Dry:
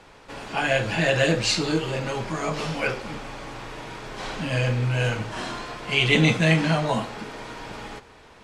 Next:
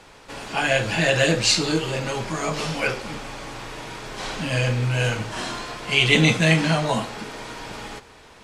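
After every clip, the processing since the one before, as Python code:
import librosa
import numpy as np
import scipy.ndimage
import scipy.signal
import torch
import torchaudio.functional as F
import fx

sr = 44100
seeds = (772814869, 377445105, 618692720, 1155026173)

y = fx.high_shelf(x, sr, hz=4100.0, db=7.0)
y = F.gain(torch.from_numpy(y), 1.0).numpy()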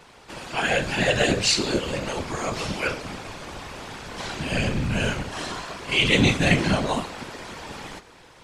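y = fx.whisperise(x, sr, seeds[0])
y = F.gain(torch.from_numpy(y), -2.0).numpy()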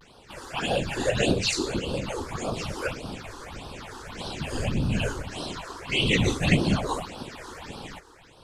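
y = fx.dynamic_eq(x, sr, hz=1700.0, q=1.9, threshold_db=-39.0, ratio=4.0, max_db=-5)
y = fx.phaser_stages(y, sr, stages=6, low_hz=160.0, high_hz=2100.0, hz=1.7, feedback_pct=5)
y = fx.vibrato(y, sr, rate_hz=0.47, depth_cents=41.0)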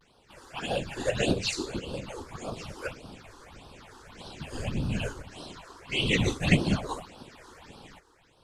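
y = fx.upward_expand(x, sr, threshold_db=-35.0, expansion=1.5)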